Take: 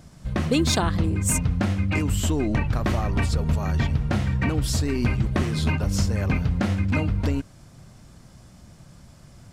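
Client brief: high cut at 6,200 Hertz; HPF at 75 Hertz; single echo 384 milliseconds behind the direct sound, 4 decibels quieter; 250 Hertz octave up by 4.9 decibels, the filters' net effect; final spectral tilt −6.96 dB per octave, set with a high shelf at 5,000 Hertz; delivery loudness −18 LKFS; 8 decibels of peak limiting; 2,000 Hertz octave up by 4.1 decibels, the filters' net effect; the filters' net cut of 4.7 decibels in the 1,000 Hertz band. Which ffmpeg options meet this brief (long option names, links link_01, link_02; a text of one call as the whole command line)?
ffmpeg -i in.wav -af "highpass=75,lowpass=6200,equalizer=frequency=250:width_type=o:gain=7,equalizer=frequency=1000:width_type=o:gain=-9,equalizer=frequency=2000:width_type=o:gain=8.5,highshelf=frequency=5000:gain=-7,alimiter=limit=-15dB:level=0:latency=1,aecho=1:1:384:0.631,volume=5dB" out.wav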